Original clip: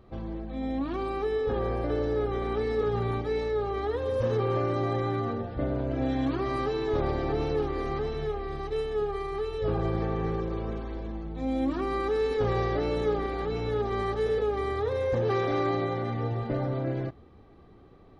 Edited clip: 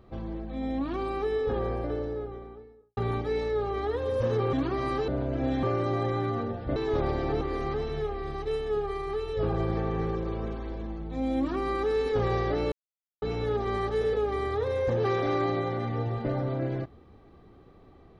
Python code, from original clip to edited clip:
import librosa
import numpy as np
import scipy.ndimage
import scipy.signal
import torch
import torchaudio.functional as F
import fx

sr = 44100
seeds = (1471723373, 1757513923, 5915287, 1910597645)

y = fx.studio_fade_out(x, sr, start_s=1.36, length_s=1.61)
y = fx.edit(y, sr, fx.swap(start_s=4.53, length_s=1.13, other_s=6.21, other_length_s=0.55),
    fx.cut(start_s=7.41, length_s=0.25),
    fx.silence(start_s=12.97, length_s=0.5), tone=tone)